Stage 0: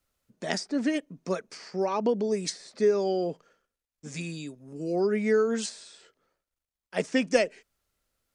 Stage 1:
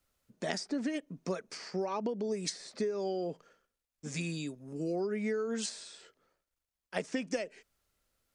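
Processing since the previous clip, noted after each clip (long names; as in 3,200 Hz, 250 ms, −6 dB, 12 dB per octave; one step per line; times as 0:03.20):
downward compressor 16 to 1, threshold −30 dBFS, peak gain reduction 15 dB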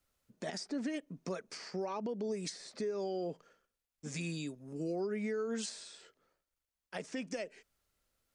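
brickwall limiter −27 dBFS, peak gain reduction 11 dB
level −2 dB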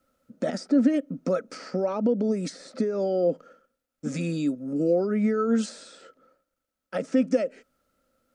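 hollow resonant body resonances 260/520/1,300 Hz, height 17 dB, ringing for 30 ms
level +2 dB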